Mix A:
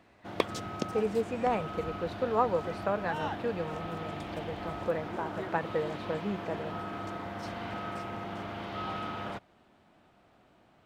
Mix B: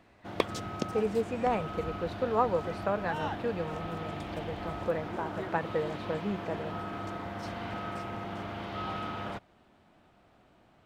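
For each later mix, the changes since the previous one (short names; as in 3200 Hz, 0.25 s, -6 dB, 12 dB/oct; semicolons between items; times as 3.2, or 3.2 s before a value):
master: add low shelf 76 Hz +6 dB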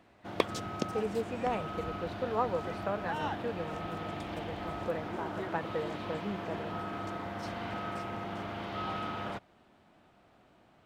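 speech -4.0 dB; master: add low shelf 76 Hz -6 dB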